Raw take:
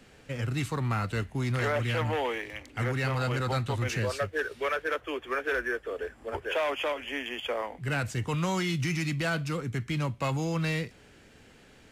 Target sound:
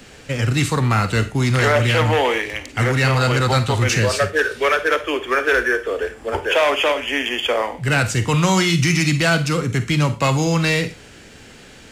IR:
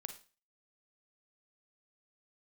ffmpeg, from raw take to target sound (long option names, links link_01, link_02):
-filter_complex "[0:a]aemphasis=mode=production:type=50kf,asplit=2[link_01][link_02];[1:a]atrim=start_sample=2205,afade=type=out:start_time=0.18:duration=0.01,atrim=end_sample=8379,lowpass=8400[link_03];[link_02][link_03]afir=irnorm=-1:irlink=0,volume=10dB[link_04];[link_01][link_04]amix=inputs=2:normalize=0,volume=2dB"